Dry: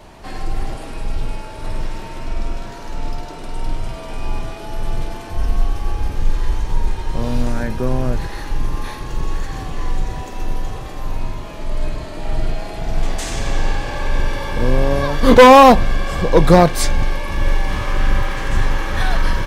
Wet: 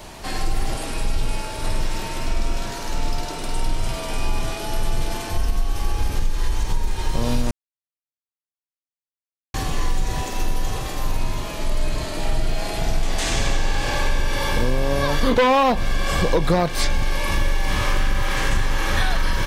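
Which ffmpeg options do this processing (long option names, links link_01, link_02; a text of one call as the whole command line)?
ffmpeg -i in.wav -filter_complex "[0:a]asplit=3[link_01][link_02][link_03];[link_01]atrim=end=7.51,asetpts=PTS-STARTPTS,afade=type=out:start_time=7.506:duration=0.004:curve=hsin[link_04];[link_02]atrim=start=7.51:end=9.54,asetpts=PTS-STARTPTS,volume=0[link_05];[link_03]atrim=start=9.54,asetpts=PTS-STARTPTS,afade=type=in:duration=0.004:curve=hsin[link_06];[link_04][link_05][link_06]concat=n=3:v=0:a=1,acrossover=split=4300[link_07][link_08];[link_08]acompressor=threshold=-40dB:ratio=4:attack=1:release=60[link_09];[link_07][link_09]amix=inputs=2:normalize=0,highshelf=frequency=3100:gain=10.5,acompressor=threshold=-16dB:ratio=10,volume=1.5dB" out.wav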